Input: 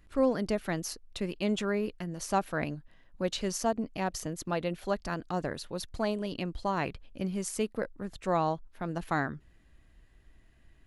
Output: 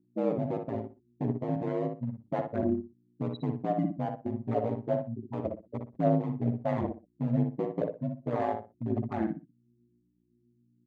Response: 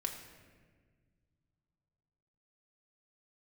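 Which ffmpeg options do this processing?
-filter_complex "[0:a]bandreject=f=700:w=23,afftfilt=real='re*gte(hypot(re,im),0.126)':imag='im*gte(hypot(re,im),0.126)':win_size=1024:overlap=0.75,lowshelf=f=410:g=12,dynaudnorm=f=100:g=5:m=11dB,alimiter=limit=-9.5dB:level=0:latency=1:release=18,asoftclip=type=hard:threshold=-15dB,aeval=exprs='val(0)+0.00316*(sin(2*PI*60*n/s)+sin(2*PI*2*60*n/s)/2+sin(2*PI*3*60*n/s)/3+sin(2*PI*4*60*n/s)/4+sin(2*PI*5*60*n/s)/5)':c=same,highpass=f=170:w=0.5412,highpass=f=170:w=1.3066,equalizer=f=280:t=q:w=4:g=6,equalizer=f=630:t=q:w=4:g=8,equalizer=f=1.4k:t=q:w=4:g=-6,equalizer=f=2k:t=q:w=4:g=4,equalizer=f=5.3k:t=q:w=4:g=-7,lowpass=f=7.2k:w=0.5412,lowpass=f=7.2k:w=1.3066,flanger=delay=3.9:depth=8.9:regen=10:speed=0.32:shape=triangular,asplit=2[a][b];[b]adelay=61,lowpass=f=2k:p=1,volume=-4.5dB,asplit=2[c][d];[d]adelay=61,lowpass=f=2k:p=1,volume=0.24,asplit=2[e][f];[f]adelay=61,lowpass=f=2k:p=1,volume=0.24[g];[a][c][e][g]amix=inputs=4:normalize=0,aeval=exprs='val(0)*sin(2*PI*56*n/s)':c=same,volume=-6dB"

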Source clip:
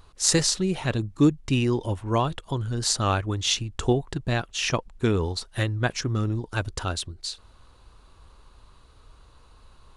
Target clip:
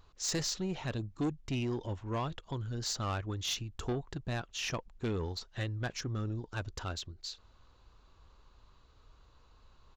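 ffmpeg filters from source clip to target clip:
-af "aresample=16000,aresample=44100,asoftclip=type=tanh:threshold=-19.5dB,volume=-8.5dB"

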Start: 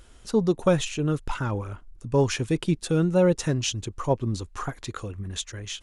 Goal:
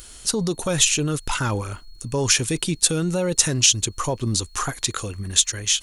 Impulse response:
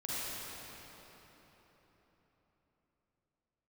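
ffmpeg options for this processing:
-af "alimiter=limit=-19.5dB:level=0:latency=1:release=31,crystalizer=i=5.5:c=0,aeval=exprs='val(0)+0.00158*sin(2*PI*4300*n/s)':c=same,volume=3.5dB"

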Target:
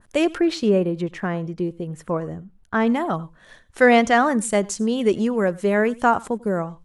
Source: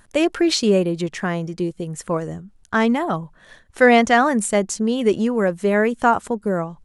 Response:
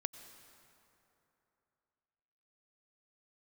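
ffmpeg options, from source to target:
-filter_complex "[0:a]asettb=1/sr,asplit=3[a][b][c];[a]atrim=end=0.384[d];[b]atrim=start=0.38:end=2.87,asetpts=PTS-STARTPTS,afade=t=in:d=0.004:c=qsin,afade=t=out:st=2.486:d=0.004:c=qsin,equalizer=f=7.5k:t=o:w=2.2:g=-12[e];[c]atrim=start=2.866[f];[d][e]acrossfade=d=0.004:c1=hsin:c2=qsin[g];[g][f]acrossfade=d=0.004:c1=qsin:c2=hsin[h];[1:a]atrim=start_sample=2205,afade=t=out:st=0.15:d=0.01,atrim=end_sample=7056[i];[h][i]afir=irnorm=-1:irlink=0,adynamicequalizer=threshold=0.0355:dfrequency=1900:dqfactor=0.7:tfrequency=1900:tqfactor=0.7:attack=5:release=100:ratio=0.375:range=1.5:mode=cutabove:tftype=highshelf"

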